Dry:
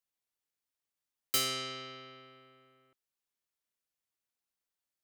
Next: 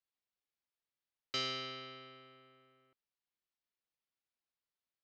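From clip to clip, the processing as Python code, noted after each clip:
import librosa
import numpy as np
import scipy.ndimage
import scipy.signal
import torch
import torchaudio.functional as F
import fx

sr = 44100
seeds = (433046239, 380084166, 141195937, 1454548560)

y = scipy.signal.sosfilt(scipy.signal.cheby2(4, 40, 9200.0, 'lowpass', fs=sr, output='sos'), x)
y = y * librosa.db_to_amplitude(-3.5)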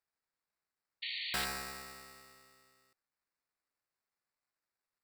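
y = fx.sample_hold(x, sr, seeds[0], rate_hz=3200.0, jitter_pct=0)
y = fx.tilt_shelf(y, sr, db=-6.5, hz=1200.0)
y = fx.spec_paint(y, sr, seeds[1], shape='noise', start_s=1.02, length_s=0.43, low_hz=1800.0, high_hz=4600.0, level_db=-40.0)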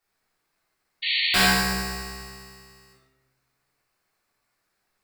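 y = fx.room_shoebox(x, sr, seeds[2], volume_m3=390.0, walls='mixed', distance_m=3.4)
y = y * librosa.db_to_amplitude(8.0)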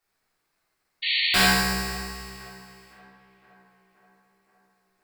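y = fx.echo_tape(x, sr, ms=521, feedback_pct=69, wet_db=-20.0, lp_hz=2300.0, drive_db=8.0, wow_cents=39)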